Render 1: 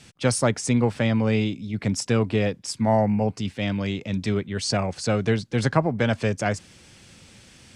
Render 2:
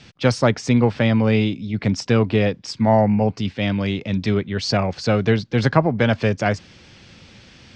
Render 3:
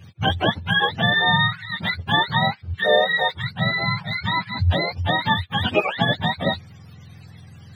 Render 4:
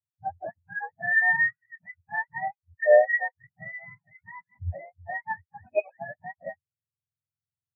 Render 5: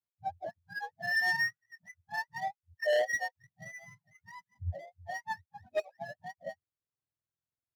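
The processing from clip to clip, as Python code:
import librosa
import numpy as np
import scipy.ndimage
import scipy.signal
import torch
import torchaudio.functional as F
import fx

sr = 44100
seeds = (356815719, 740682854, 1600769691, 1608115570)

y1 = scipy.signal.sosfilt(scipy.signal.butter(4, 5400.0, 'lowpass', fs=sr, output='sos'), x)
y1 = y1 * 10.0 ** (4.5 / 20.0)
y2 = fx.octave_mirror(y1, sr, pivot_hz=630.0)
y2 = fx.peak_eq(y2, sr, hz=260.0, db=-8.5, octaves=0.26)
y3 = scipy.signal.sosfilt(scipy.signal.cheby1(6, 9, 2600.0, 'lowpass', fs=sr, output='sos'), y2)
y3 = fx.spectral_expand(y3, sr, expansion=2.5)
y4 = scipy.ndimage.median_filter(y3, 15, mode='constant')
y4 = np.clip(10.0 ** (21.0 / 20.0) * y4, -1.0, 1.0) / 10.0 ** (21.0 / 20.0)
y4 = y4 * 10.0 ** (-4.0 / 20.0)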